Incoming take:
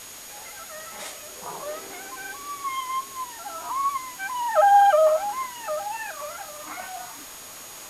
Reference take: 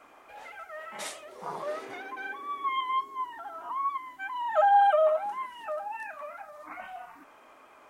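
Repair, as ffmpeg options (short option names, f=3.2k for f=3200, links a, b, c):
-af "bandreject=f=6.7k:w=30,afwtdn=0.0089,asetnsamples=n=441:p=0,asendcmd='3.46 volume volume -5dB',volume=0dB"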